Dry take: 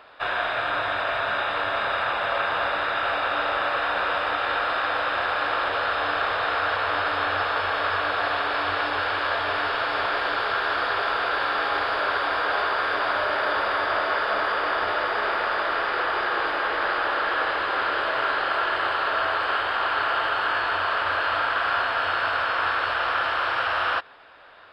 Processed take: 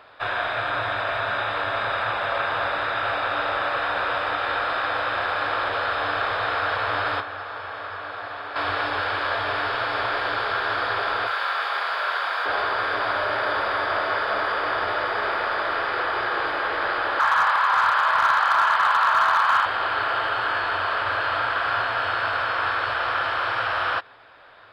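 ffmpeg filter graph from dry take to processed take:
ffmpeg -i in.wav -filter_complex "[0:a]asettb=1/sr,asplit=3[link_01][link_02][link_03];[link_01]atrim=end=7.204[link_04];[link_02]atrim=start=7.2:end=8.56,asetpts=PTS-STARTPTS,afade=type=in:duration=0.004:curve=qsin,afade=type=out:start_time=1.356:duration=0.004:curve=qsin,highpass=49,acrossover=split=580|2000[link_05][link_06][link_07];[link_05]acompressor=threshold=-46dB:ratio=4[link_08];[link_06]acompressor=threshold=-34dB:ratio=4[link_09];[link_07]acompressor=threshold=-47dB:ratio=4[link_10];[link_08][link_09][link_10]amix=inputs=3:normalize=0[link_11];[link_03]atrim=start=8.556[link_12];[link_04][link_11]acrossfade=duration=0.004:curve1=hsin:curve2=qsin[link_13];[link_13][link_12]acrossfade=duration=0.004:curve1=qsin:curve2=hsin,asettb=1/sr,asplit=3[link_14][link_15][link_16];[link_14]atrim=end=11.274[link_17];[link_15]atrim=start=11.27:end=12.46,asetpts=PTS-STARTPTS,afade=type=in:duration=0.004:curve=qsin,afade=type=out:start_time=1.186:duration=0.004:curve=qsin,highpass=740,asplit=2[link_18][link_19];[link_19]adelay=25,volume=-11dB[link_20];[link_18][link_20]amix=inputs=2:normalize=0,atrim=end_sample=52479,aeval=exprs='sgn(val(0))*max(abs(val(0))-0.00188,0)':channel_layout=same[link_21];[link_16]atrim=start=12.456[link_22];[link_17][link_21]acrossfade=duration=0.004:curve1=hsin:curve2=qsin[link_23];[link_23][link_22]acrossfade=duration=0.004:curve1=qsin:curve2=hsin,asettb=1/sr,asplit=3[link_24][link_25][link_26];[link_24]atrim=end=17.194[link_27];[link_25]atrim=start=17.19:end=19.66,asetpts=PTS-STARTPTS,afade=type=in:duration=0.004:curve=qsin,afade=type=out:start_time=2.466:duration=0.004:curve=qsin,highpass=frequency=1000:width_type=q:width=3.3,asoftclip=type=hard:threshold=-12.5dB[link_28];[link_26]atrim=start=19.656[link_29];[link_27][link_28]acrossfade=duration=0.004:curve1=hsin:curve2=qsin[link_30];[link_30][link_29]acrossfade=duration=0.004:curve1=qsin:curve2=hsin,equalizer=frequency=110:width=6.5:gain=12,bandreject=frequency=2800:width=18" out.wav

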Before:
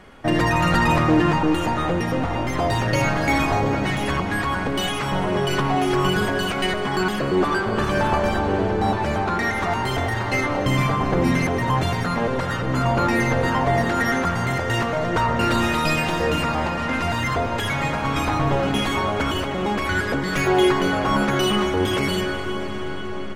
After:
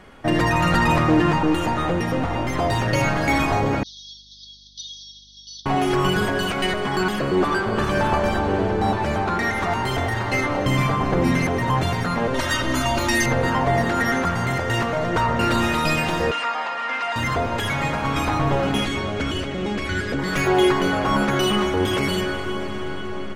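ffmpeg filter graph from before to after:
ffmpeg -i in.wav -filter_complex "[0:a]asettb=1/sr,asplit=3[link_01][link_02][link_03];[link_01]atrim=end=3.834[link_04];[link_02]atrim=start=3.83:end=5.66,asetpts=PTS-STARTPTS,afade=type=in:duration=0.004:curve=qsin,afade=type=out:start_time=1.826:duration=0.004:curve=qsin,asuperpass=centerf=4600:order=20:qfactor=1.6,aeval=exprs='val(0)+0.00158*(sin(2*PI*50*n/s)+sin(2*PI*2*50*n/s)/2+sin(2*PI*3*50*n/s)/3+sin(2*PI*4*50*n/s)/4+sin(2*PI*5*50*n/s)/5)':channel_layout=same[link_05];[link_03]atrim=start=5.656[link_06];[link_04][link_05]acrossfade=duration=0.004:curve1=hsin:curve2=qsin[link_07];[link_07][link_06]acrossfade=duration=0.004:curve1=qsin:curve2=hsin,asettb=1/sr,asplit=3[link_08][link_09][link_10];[link_08]atrim=end=12.344[link_11];[link_09]atrim=start=12.34:end=13.26,asetpts=PTS-STARTPTS,afade=type=in:duration=0.004:curve=qsin,afade=type=out:start_time=0.916:duration=0.004:curve=qsin,highshelf=frequency=2200:gain=10,acrossover=split=140|3000[link_12][link_13][link_14];[link_13]acompressor=threshold=-21dB:ratio=6:attack=3.2:release=140:knee=2.83:detection=peak[link_15];[link_12][link_15][link_14]amix=inputs=3:normalize=0,aecho=1:1:3.2:0.77,atrim=end_sample=40572[link_16];[link_10]atrim=start=13.256[link_17];[link_11][link_16]acrossfade=duration=0.004:curve1=hsin:curve2=qsin[link_18];[link_18][link_17]acrossfade=duration=0.004:curve1=qsin:curve2=hsin,asettb=1/sr,asplit=3[link_19][link_20][link_21];[link_19]atrim=end=16.314[link_22];[link_20]atrim=start=16.31:end=17.16,asetpts=PTS-STARTPTS,afade=type=in:duration=0.004:curve=qsin,afade=type=out:start_time=0.846:duration=0.004:curve=qsin,highpass=800,lowpass=5000,aecho=1:1:4.2:0.48,atrim=end_sample=37485[link_23];[link_21]atrim=start=17.156[link_24];[link_22][link_23]acrossfade=duration=0.004:curve1=hsin:curve2=qsin[link_25];[link_25][link_24]acrossfade=duration=0.004:curve1=qsin:curve2=hsin,asettb=1/sr,asplit=3[link_26][link_27][link_28];[link_26]atrim=end=18.854[link_29];[link_27]atrim=start=18.85:end=20.19,asetpts=PTS-STARTPTS,afade=type=in:duration=0.004:curve=qsin,afade=type=out:start_time=1.336:duration=0.004:curve=qsin,lowpass=8600,equalizer=frequency=950:width=1.2:gain=-9.5[link_30];[link_28]atrim=start=20.186[link_31];[link_29][link_30]acrossfade=duration=0.004:curve1=hsin:curve2=qsin[link_32];[link_32][link_31]acrossfade=duration=0.004:curve1=qsin:curve2=hsin" out.wav

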